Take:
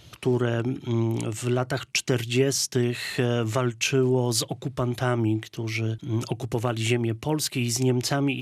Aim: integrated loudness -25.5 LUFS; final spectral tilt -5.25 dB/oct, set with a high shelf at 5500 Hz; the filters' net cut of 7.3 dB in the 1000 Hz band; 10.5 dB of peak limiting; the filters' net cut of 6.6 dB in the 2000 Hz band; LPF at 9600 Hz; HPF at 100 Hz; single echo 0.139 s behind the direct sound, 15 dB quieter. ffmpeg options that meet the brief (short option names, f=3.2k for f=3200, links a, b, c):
-af "highpass=100,lowpass=9.6k,equalizer=f=1k:t=o:g=-9,equalizer=f=2k:t=o:g=-5.5,highshelf=f=5.5k:g=-6.5,alimiter=limit=-22.5dB:level=0:latency=1,aecho=1:1:139:0.178,volume=6.5dB"